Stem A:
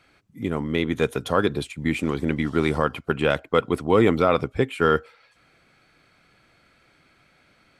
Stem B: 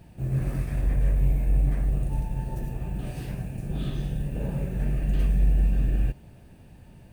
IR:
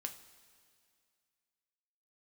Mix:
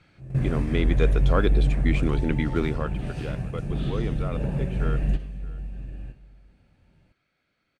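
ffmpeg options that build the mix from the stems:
-filter_complex "[0:a]deesser=0.8,equalizer=f=900:w=2.1:g=-4,volume=0.794,afade=t=out:st=2.45:d=0.57:silence=0.237137,asplit=3[s0][s1][s2];[s1]volume=0.0891[s3];[1:a]volume=1.06,asplit=2[s4][s5];[s5]volume=0.282[s6];[s2]apad=whole_len=314106[s7];[s4][s7]sidechaingate=range=0.0224:threshold=0.00141:ratio=16:detection=peak[s8];[2:a]atrim=start_sample=2205[s9];[s6][s9]afir=irnorm=-1:irlink=0[s10];[s3]aecho=0:1:625:1[s11];[s0][s8][s10][s11]amix=inputs=4:normalize=0,lowpass=6600"

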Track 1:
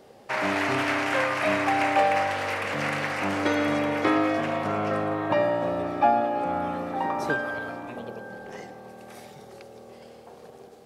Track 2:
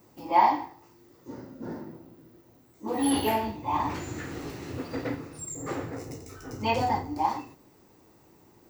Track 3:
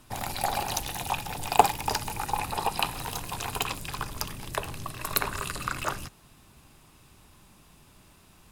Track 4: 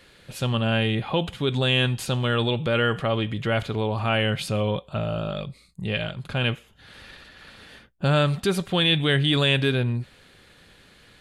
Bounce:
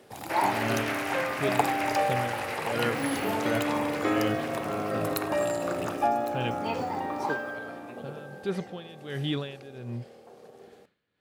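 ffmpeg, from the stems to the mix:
-filter_complex "[0:a]bandreject=f=960:w=13,volume=0.531[s0];[1:a]agate=range=0.0224:threshold=0.00562:ratio=3:detection=peak,volume=0.422[s1];[2:a]volume=0.422,asplit=2[s2][s3];[s3]volume=0.178[s4];[3:a]lowpass=f=2100:p=1,aeval=exprs='val(0)*pow(10,-20*(0.5-0.5*cos(2*PI*1.4*n/s))/20)':c=same,volume=0.473[s5];[s4]aecho=0:1:1108:1[s6];[s0][s1][s2][s5][s6]amix=inputs=5:normalize=0,highpass=100,equalizer=f=410:w=1.5:g=3"

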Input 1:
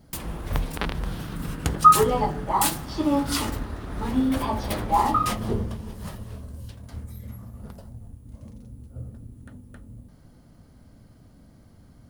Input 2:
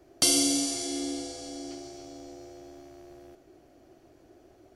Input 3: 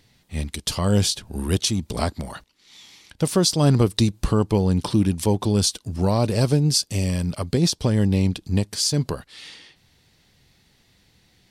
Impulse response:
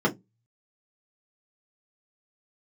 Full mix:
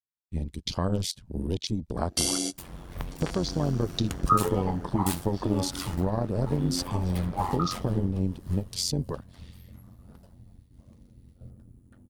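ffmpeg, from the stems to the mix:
-filter_complex "[0:a]adelay=2450,volume=0.473[s0];[1:a]adelay=1950,volume=0.891[s1];[2:a]deesser=0.4,afwtdn=0.0251,acompressor=threshold=0.0708:ratio=3,volume=1.06,asplit=2[s2][s3];[s3]apad=whole_len=295575[s4];[s1][s4]sidechaingate=range=0.0141:threshold=0.00224:ratio=16:detection=peak[s5];[s0][s5][s2]amix=inputs=3:normalize=0,agate=range=0.0224:threshold=0.00398:ratio=3:detection=peak,tremolo=f=90:d=0.71"

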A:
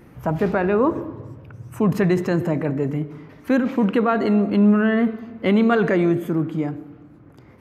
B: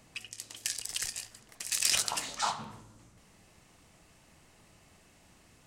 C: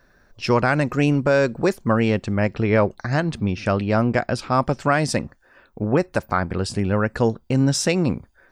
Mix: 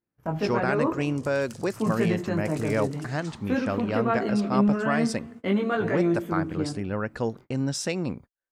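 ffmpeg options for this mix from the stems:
-filter_complex "[0:a]flanger=delay=17.5:depth=4.4:speed=0.49,volume=0.631[s0];[1:a]acompressor=threshold=0.0141:ratio=6,adelay=850,volume=0.398[s1];[2:a]volume=0.398[s2];[s0][s1][s2]amix=inputs=3:normalize=0,agate=range=0.0224:threshold=0.00794:ratio=16:detection=peak,lowshelf=f=73:g=-8"

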